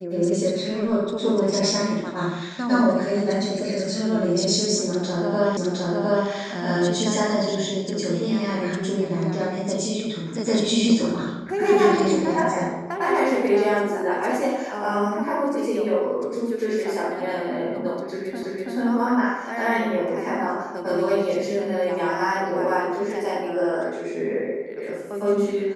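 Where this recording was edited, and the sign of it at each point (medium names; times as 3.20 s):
5.57 s: repeat of the last 0.71 s
18.43 s: repeat of the last 0.33 s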